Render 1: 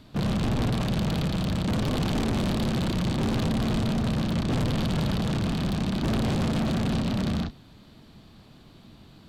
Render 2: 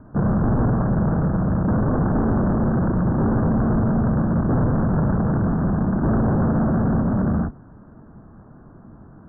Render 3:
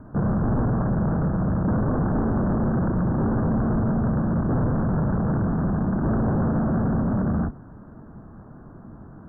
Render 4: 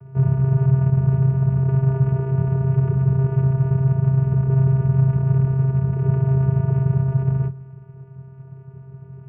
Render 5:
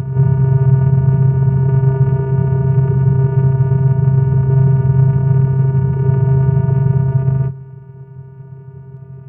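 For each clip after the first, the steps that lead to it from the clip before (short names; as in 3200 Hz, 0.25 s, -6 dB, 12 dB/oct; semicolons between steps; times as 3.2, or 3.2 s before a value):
steep low-pass 1600 Hz 72 dB/oct; gain +6.5 dB
limiter -19 dBFS, peak gain reduction 6 dB; gain +1.5 dB
vocoder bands 8, square 133 Hz; gain +6 dB
reverse echo 0.318 s -8 dB; gain +5.5 dB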